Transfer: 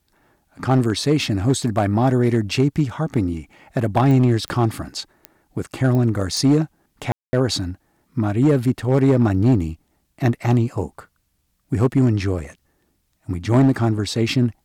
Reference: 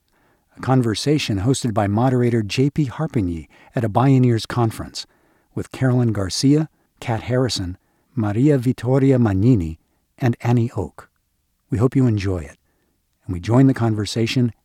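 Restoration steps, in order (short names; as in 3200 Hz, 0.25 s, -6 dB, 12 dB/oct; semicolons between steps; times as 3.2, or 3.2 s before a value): clip repair -9.5 dBFS; de-click; room tone fill 7.12–7.33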